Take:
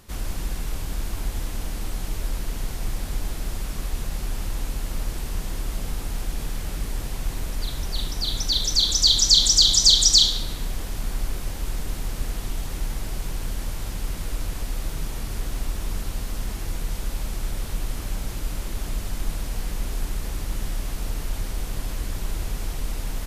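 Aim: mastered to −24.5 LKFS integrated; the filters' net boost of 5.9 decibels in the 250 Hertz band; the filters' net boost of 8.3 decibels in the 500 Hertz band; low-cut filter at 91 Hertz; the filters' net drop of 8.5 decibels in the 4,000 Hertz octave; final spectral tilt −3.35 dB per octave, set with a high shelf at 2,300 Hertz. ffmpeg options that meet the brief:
ffmpeg -i in.wav -af "highpass=91,equalizer=frequency=250:width_type=o:gain=5.5,equalizer=frequency=500:width_type=o:gain=9,highshelf=frequency=2300:gain=-4,equalizer=frequency=4000:width_type=o:gain=-6.5,volume=6.5dB" out.wav

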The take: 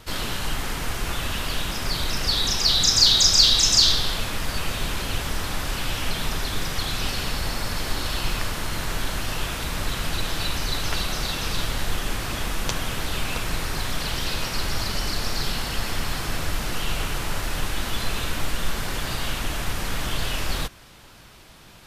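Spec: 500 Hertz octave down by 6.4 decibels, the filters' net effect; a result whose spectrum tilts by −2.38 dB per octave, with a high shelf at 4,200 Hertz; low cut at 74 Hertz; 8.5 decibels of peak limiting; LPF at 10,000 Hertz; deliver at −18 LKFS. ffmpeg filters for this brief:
ffmpeg -i in.wav -af "highpass=74,lowpass=10000,equalizer=frequency=500:width_type=o:gain=-8.5,highshelf=frequency=4200:gain=-5,volume=10.5dB,alimiter=limit=-4dB:level=0:latency=1" out.wav

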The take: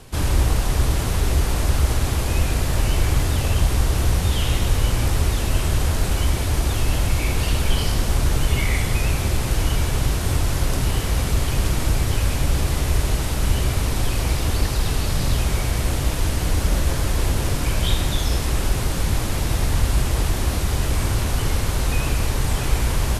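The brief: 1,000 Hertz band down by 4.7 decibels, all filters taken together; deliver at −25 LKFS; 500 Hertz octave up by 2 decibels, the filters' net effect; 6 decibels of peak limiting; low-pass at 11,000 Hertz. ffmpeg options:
ffmpeg -i in.wav -af "lowpass=11000,equalizer=frequency=500:width_type=o:gain=4.5,equalizer=frequency=1000:width_type=o:gain=-8,volume=-1.5dB,alimiter=limit=-13dB:level=0:latency=1" out.wav

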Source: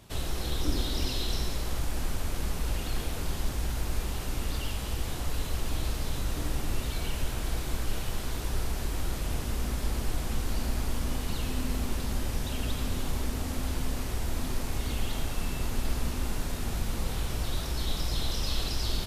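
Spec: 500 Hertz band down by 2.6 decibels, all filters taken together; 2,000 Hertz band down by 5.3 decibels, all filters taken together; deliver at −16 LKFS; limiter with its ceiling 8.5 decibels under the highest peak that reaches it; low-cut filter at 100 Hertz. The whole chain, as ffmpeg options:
ffmpeg -i in.wav -af "highpass=100,equalizer=frequency=500:width_type=o:gain=-3,equalizer=frequency=2000:width_type=o:gain=-7,volume=23dB,alimiter=limit=-6.5dB:level=0:latency=1" out.wav

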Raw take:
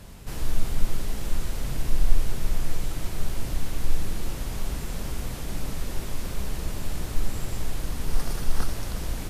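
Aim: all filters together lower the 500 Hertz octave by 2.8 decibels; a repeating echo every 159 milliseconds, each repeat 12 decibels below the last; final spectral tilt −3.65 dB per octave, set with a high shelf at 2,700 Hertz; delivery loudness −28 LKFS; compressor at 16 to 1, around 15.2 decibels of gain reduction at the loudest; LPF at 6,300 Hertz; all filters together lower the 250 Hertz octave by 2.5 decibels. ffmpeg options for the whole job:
ffmpeg -i in.wav -af "lowpass=6300,equalizer=frequency=250:width_type=o:gain=-3,equalizer=frequency=500:width_type=o:gain=-3,highshelf=frequency=2700:gain=7.5,acompressor=threshold=-23dB:ratio=16,aecho=1:1:159|318|477:0.251|0.0628|0.0157,volume=9dB" out.wav

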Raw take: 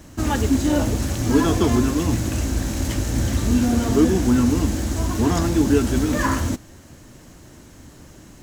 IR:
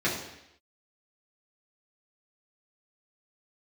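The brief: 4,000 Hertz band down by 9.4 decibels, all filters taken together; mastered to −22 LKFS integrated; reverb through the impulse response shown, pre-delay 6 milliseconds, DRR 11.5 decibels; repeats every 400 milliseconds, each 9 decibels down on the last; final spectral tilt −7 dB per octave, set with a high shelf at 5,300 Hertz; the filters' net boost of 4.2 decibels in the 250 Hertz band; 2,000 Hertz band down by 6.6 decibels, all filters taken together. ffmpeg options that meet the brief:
-filter_complex "[0:a]equalizer=frequency=250:width_type=o:gain=5,equalizer=frequency=2000:width_type=o:gain=-6.5,equalizer=frequency=4000:width_type=o:gain=-8,highshelf=frequency=5300:gain=-6,aecho=1:1:400|800|1200|1600:0.355|0.124|0.0435|0.0152,asplit=2[link_01][link_02];[1:a]atrim=start_sample=2205,adelay=6[link_03];[link_02][link_03]afir=irnorm=-1:irlink=0,volume=-23.5dB[link_04];[link_01][link_04]amix=inputs=2:normalize=0,volume=-5dB"

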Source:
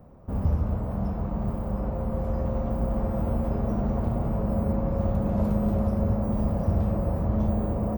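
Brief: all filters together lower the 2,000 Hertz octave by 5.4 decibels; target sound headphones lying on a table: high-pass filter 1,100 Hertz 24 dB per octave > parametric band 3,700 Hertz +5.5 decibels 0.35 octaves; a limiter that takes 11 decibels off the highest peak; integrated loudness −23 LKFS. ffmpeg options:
ffmpeg -i in.wav -af "equalizer=frequency=2000:width_type=o:gain=-7.5,alimiter=limit=-23dB:level=0:latency=1,highpass=frequency=1100:width=0.5412,highpass=frequency=1100:width=1.3066,equalizer=frequency=3700:width_type=o:width=0.35:gain=5.5,volume=29dB" out.wav

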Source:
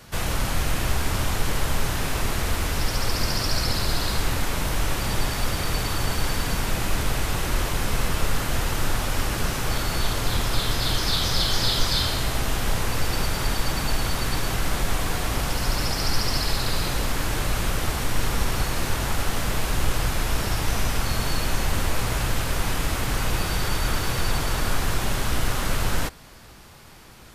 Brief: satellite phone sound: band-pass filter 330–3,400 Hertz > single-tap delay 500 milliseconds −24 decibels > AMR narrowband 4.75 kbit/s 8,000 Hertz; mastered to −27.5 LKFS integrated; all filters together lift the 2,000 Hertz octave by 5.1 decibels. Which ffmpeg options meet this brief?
ffmpeg -i in.wav -af "highpass=330,lowpass=3400,equalizer=frequency=2000:width_type=o:gain=7,aecho=1:1:500:0.0631,volume=6dB" -ar 8000 -c:a libopencore_amrnb -b:a 4750 out.amr

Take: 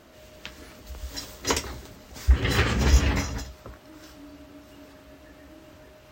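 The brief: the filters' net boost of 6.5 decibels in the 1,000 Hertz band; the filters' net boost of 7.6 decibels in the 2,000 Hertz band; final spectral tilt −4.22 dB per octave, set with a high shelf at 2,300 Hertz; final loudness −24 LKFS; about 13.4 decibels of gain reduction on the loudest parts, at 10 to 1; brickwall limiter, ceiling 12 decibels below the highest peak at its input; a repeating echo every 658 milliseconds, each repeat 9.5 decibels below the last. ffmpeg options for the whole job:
ffmpeg -i in.wav -af "equalizer=frequency=1000:width_type=o:gain=6,equalizer=frequency=2000:width_type=o:gain=9,highshelf=frequency=2300:gain=-3.5,acompressor=threshold=-26dB:ratio=10,alimiter=level_in=1.5dB:limit=-24dB:level=0:latency=1,volume=-1.5dB,aecho=1:1:658|1316|1974|2632:0.335|0.111|0.0365|0.012,volume=14.5dB" out.wav

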